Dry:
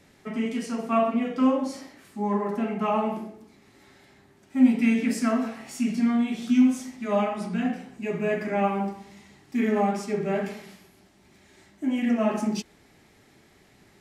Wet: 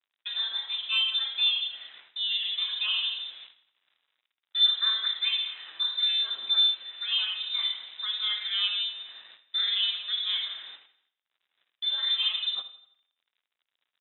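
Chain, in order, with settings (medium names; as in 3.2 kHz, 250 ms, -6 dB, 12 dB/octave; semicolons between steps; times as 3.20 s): in parallel at +2.5 dB: compression 6:1, threshold -37 dBFS, peak gain reduction 22.5 dB; on the sum: bit crusher 7-bit; gate -42 dBFS, range -20 dB; frequency inversion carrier 3.8 kHz; high-pass 1 kHz 6 dB/octave; feedback delay 83 ms, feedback 45%, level -15.5 dB; on a send at -17 dB: reverberation RT60 0.75 s, pre-delay 53 ms; on the sum: trim -5.5 dB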